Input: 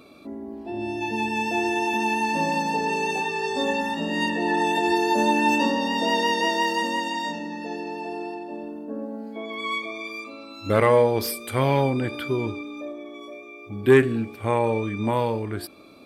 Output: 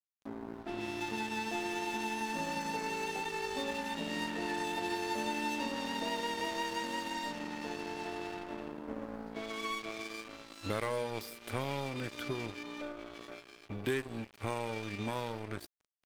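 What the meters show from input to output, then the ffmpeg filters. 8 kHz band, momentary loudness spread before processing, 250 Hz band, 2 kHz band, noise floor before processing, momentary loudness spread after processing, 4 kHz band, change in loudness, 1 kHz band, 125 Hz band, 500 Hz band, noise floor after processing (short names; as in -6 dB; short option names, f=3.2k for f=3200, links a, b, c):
-8.0 dB, 16 LU, -13.5 dB, -12.0 dB, -43 dBFS, 9 LU, -10.0 dB, -13.5 dB, -13.0 dB, -14.5 dB, -15.5 dB, -58 dBFS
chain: -filter_complex "[0:a]acrossover=split=1500|3200[a][b][c];[a]acompressor=threshold=-33dB:ratio=4[d];[b]acompressor=threshold=-44dB:ratio=4[e];[c]acompressor=threshold=-45dB:ratio=4[f];[d][e][f]amix=inputs=3:normalize=0,aeval=exprs='sgn(val(0))*max(abs(val(0))-0.0106,0)':c=same"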